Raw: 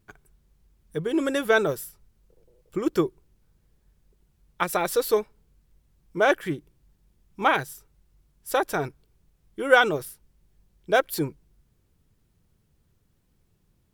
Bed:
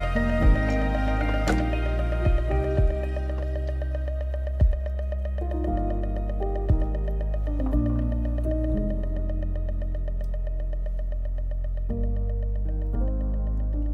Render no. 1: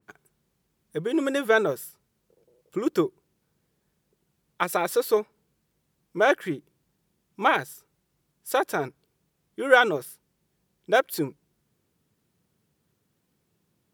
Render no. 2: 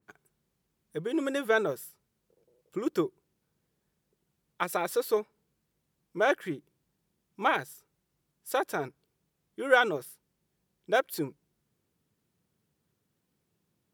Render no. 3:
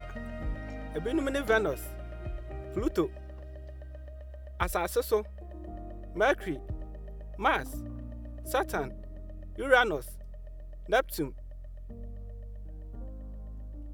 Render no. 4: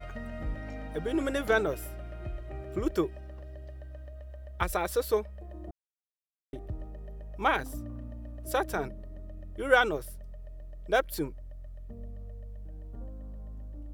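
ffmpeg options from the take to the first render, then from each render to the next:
-af "highpass=160,adynamicequalizer=threshold=0.0141:dfrequency=2500:dqfactor=0.7:tfrequency=2500:tqfactor=0.7:attack=5:release=100:ratio=0.375:range=2.5:mode=cutabove:tftype=highshelf"
-af "volume=0.562"
-filter_complex "[1:a]volume=0.158[s0];[0:a][s0]amix=inputs=2:normalize=0"
-filter_complex "[0:a]asplit=3[s0][s1][s2];[s0]atrim=end=5.71,asetpts=PTS-STARTPTS,afade=t=out:st=5.706:d=0.004:c=hsin[s3];[s1]atrim=start=5.71:end=6.53,asetpts=PTS-STARTPTS,volume=0[s4];[s2]atrim=start=6.53,asetpts=PTS-STARTPTS,afade=t=in:d=0.004:c=hsin[s5];[s3][s4][s5]concat=n=3:v=0:a=1"

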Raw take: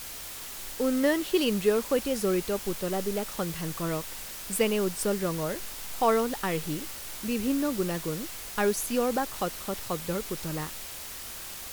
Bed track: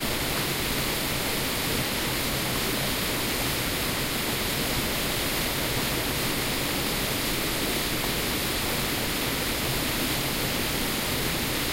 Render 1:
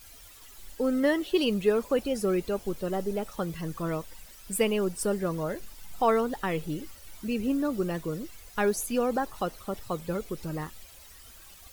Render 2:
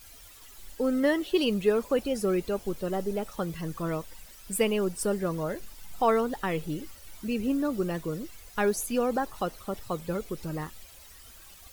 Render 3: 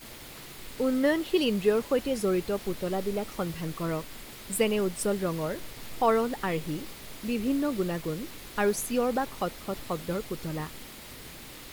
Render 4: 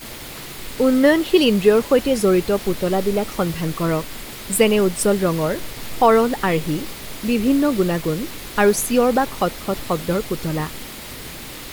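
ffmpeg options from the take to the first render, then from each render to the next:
-af "afftdn=nr=14:nf=-40"
-af anull
-filter_complex "[1:a]volume=0.112[s0];[0:a][s0]amix=inputs=2:normalize=0"
-af "volume=3.35,alimiter=limit=0.708:level=0:latency=1"

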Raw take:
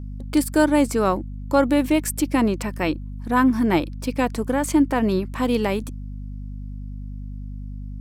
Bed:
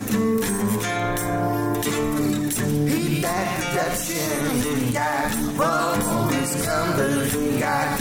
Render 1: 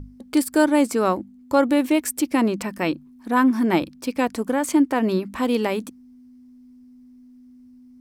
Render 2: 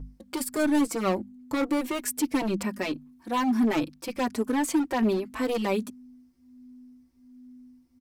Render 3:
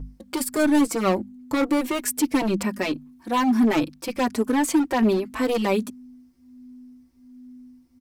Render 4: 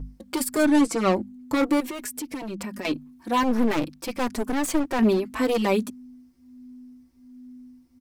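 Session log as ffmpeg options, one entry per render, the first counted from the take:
-af "bandreject=f=50:t=h:w=6,bandreject=f=100:t=h:w=6,bandreject=f=150:t=h:w=6,bandreject=f=200:t=h:w=6"
-filter_complex "[0:a]asoftclip=type=hard:threshold=0.126,asplit=2[s0][s1];[s1]adelay=4.1,afreqshift=1.3[s2];[s0][s2]amix=inputs=2:normalize=1"
-af "volume=1.68"
-filter_complex "[0:a]asettb=1/sr,asplit=3[s0][s1][s2];[s0]atrim=end=0.654[s3];[s1]atrim=start=0.65:end=1.22,asetpts=PTS-STARTPTS,afade=t=in:d=0.004:c=qsin,afade=t=out:st=0.566:d=0.004:c=qsin,lowpass=9300[s4];[s2]atrim=start=1.216[s5];[s3][s4]acrossfade=d=0.004:c1=hsin:c2=qsin[s6];[s6][s5]acrossfade=d=0.004:c1=qsin:c2=hsin,asettb=1/sr,asplit=3[s7][s8][s9];[s7]atrim=end=1.804[s10];[s8]atrim=start=1.8:end=2.85,asetpts=PTS-STARTPTS,afade=t=in:d=0.004:c=qsin,afade=t=out:st=1.046:d=0.004:c=qsin,acompressor=threshold=0.0355:ratio=10:attack=3.2:release=140:knee=1:detection=peak[s11];[s9]atrim=start=2.846[s12];[s10][s11]acrossfade=d=0.004:c1=hsin:c2=qsin[s13];[s13][s12]acrossfade=d=0.004:c1=qsin:c2=hsin,asettb=1/sr,asplit=3[s14][s15][s16];[s14]atrim=end=3.434[s17];[s15]atrim=start=3.43:end=4.99,asetpts=PTS-STARTPTS,afade=t=in:d=0.004:c=qsin,afade=t=out:st=1.556:d=0.004:c=qsin,aeval=exprs='clip(val(0),-1,0.0299)':c=same[s18];[s16]atrim=start=4.986[s19];[s17][s18]acrossfade=d=0.004:c1=hsin:c2=qsin[s20];[s20][s19]acrossfade=d=0.004:c1=qsin:c2=hsin"

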